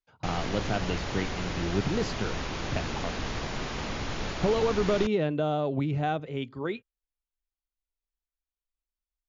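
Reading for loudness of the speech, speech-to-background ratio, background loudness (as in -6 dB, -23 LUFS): -30.5 LUFS, 4.0 dB, -34.5 LUFS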